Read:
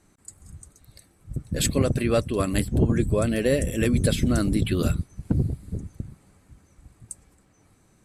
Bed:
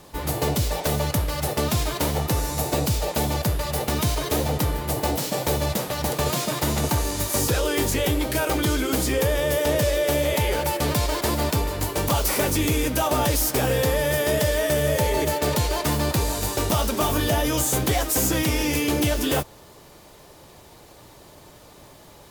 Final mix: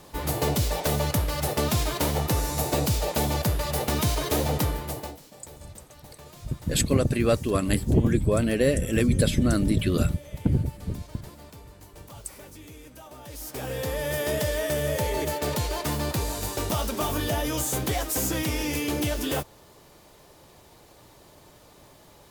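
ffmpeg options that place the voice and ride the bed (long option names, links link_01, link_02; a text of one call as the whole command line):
ffmpeg -i stem1.wav -i stem2.wav -filter_complex "[0:a]adelay=5150,volume=0dB[link_01];[1:a]volume=17dB,afade=type=out:start_time=4.61:duration=0.58:silence=0.0794328,afade=type=in:start_time=13.23:duration=1:silence=0.11885[link_02];[link_01][link_02]amix=inputs=2:normalize=0" out.wav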